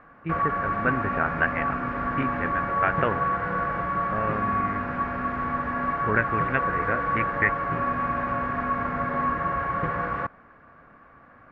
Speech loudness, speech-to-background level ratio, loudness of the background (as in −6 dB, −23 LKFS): −29.0 LKFS, −2.0 dB, −27.0 LKFS